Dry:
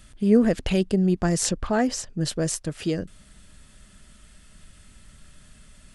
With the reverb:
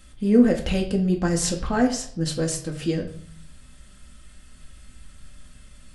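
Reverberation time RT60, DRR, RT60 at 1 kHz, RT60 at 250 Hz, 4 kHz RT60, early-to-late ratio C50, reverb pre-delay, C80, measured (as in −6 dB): 0.55 s, 1.0 dB, 0.55 s, 0.90 s, 0.50 s, 9.5 dB, 4 ms, 13.0 dB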